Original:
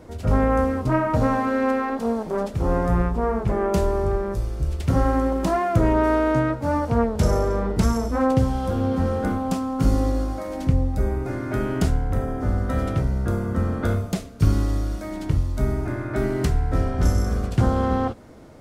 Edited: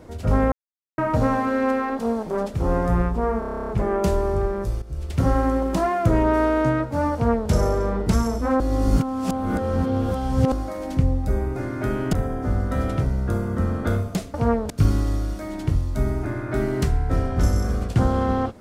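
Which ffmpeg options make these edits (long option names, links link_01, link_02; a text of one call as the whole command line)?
ffmpeg -i in.wav -filter_complex "[0:a]asplit=19[link_01][link_02][link_03][link_04][link_05][link_06][link_07][link_08][link_09][link_10][link_11][link_12][link_13][link_14][link_15][link_16][link_17][link_18][link_19];[link_01]atrim=end=0.52,asetpts=PTS-STARTPTS,afade=type=out:start_time=0.516:duration=0.004:curve=hsin[link_20];[link_02]atrim=start=0.52:end=0.98,asetpts=PTS-STARTPTS,volume=0[link_21];[link_03]atrim=start=0.98:end=3.422,asetpts=PTS-STARTPTS,afade=type=in:duration=0.004:curve=hsin[link_22];[link_04]atrim=start=3.388:end=3.422[link_23];[link_05]atrim=start=3.388:end=3.422[link_24];[link_06]atrim=start=3.388:end=3.422[link_25];[link_07]atrim=start=3.388:end=3.422[link_26];[link_08]atrim=start=3.388:end=3.422[link_27];[link_09]atrim=start=3.388:end=3.422[link_28];[link_10]atrim=start=3.388:end=3.422[link_29];[link_11]atrim=start=3.388:end=3.422[link_30];[link_12]atrim=start=3.388:end=3.422[link_31];[link_13]atrim=start=3.388:end=4.52,asetpts=PTS-STARTPTS,afade=type=out:start_time=1.128:duration=0.004:curve=hsin:silence=0.211349[link_32];[link_14]atrim=start=4.52:end=8.302,asetpts=PTS-STARTPTS,afade=type=in:duration=0.37:silence=0.211349[link_33];[link_15]atrim=start=8.298:end=10.222,asetpts=PTS-STARTPTS,areverse[link_34];[link_16]atrim=start=10.218:end=11.832[link_35];[link_17]atrim=start=12.108:end=14.322[link_36];[link_18]atrim=start=6.838:end=7.202[link_37];[link_19]atrim=start=14.318[link_38];[link_20][link_21][link_22]concat=n=3:v=0:a=1[link_39];[link_39][link_23]acrossfade=duration=0.004:curve1=hsin:curve2=hsin[link_40];[link_40][link_24]acrossfade=duration=0.004:curve1=hsin:curve2=hsin[link_41];[link_41][link_25]acrossfade=duration=0.004:curve1=hsin:curve2=hsin[link_42];[link_42][link_26]acrossfade=duration=0.004:curve1=hsin:curve2=hsin[link_43];[link_43][link_27]acrossfade=duration=0.004:curve1=hsin:curve2=hsin[link_44];[link_44][link_28]acrossfade=duration=0.004:curve1=hsin:curve2=hsin[link_45];[link_45][link_29]acrossfade=duration=0.004:curve1=hsin:curve2=hsin[link_46];[link_46][link_30]acrossfade=duration=0.004:curve1=hsin:curve2=hsin[link_47];[link_47][link_31]acrossfade=duration=0.004:curve1=hsin:curve2=hsin[link_48];[link_32][link_33]concat=n=2:v=0:a=1[link_49];[link_48][link_49]acrossfade=duration=0.004:curve1=hsin:curve2=hsin[link_50];[link_50][link_34]acrossfade=duration=0.004:curve1=hsin:curve2=hsin[link_51];[link_51][link_35]acrossfade=duration=0.004:curve1=hsin:curve2=hsin[link_52];[link_52][link_36]acrossfade=duration=0.004:curve1=hsin:curve2=hsin[link_53];[link_53][link_37]acrossfade=duration=0.004:curve1=hsin:curve2=hsin[link_54];[link_54][link_38]acrossfade=duration=0.004:curve1=hsin:curve2=hsin" out.wav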